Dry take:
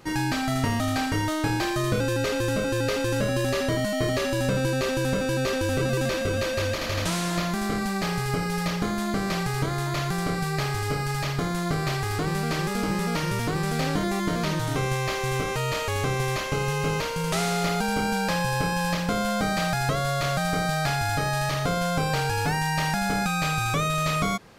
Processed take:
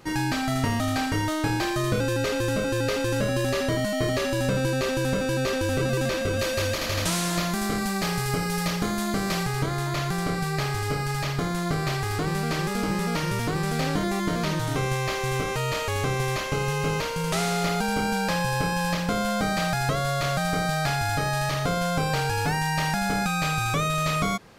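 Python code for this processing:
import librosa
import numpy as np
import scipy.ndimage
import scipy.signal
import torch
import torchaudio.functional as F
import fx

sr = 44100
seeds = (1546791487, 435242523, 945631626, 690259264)

y = fx.high_shelf(x, sr, hz=5300.0, db=6.5, at=(6.39, 9.46))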